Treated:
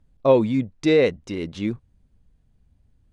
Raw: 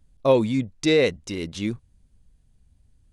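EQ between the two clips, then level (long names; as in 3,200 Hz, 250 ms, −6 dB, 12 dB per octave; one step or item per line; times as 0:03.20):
low-pass filter 1,900 Hz 6 dB per octave
low-shelf EQ 100 Hz −5 dB
+2.5 dB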